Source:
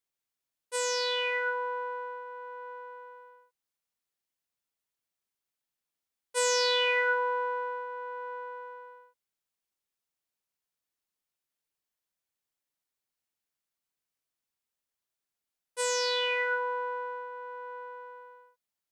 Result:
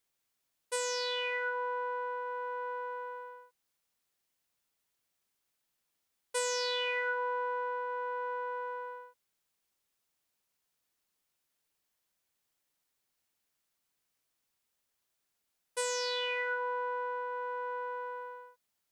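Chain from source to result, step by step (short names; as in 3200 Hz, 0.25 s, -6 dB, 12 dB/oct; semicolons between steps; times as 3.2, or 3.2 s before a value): compressor 3:1, threshold -41 dBFS, peak gain reduction 13.5 dB; gain +6.5 dB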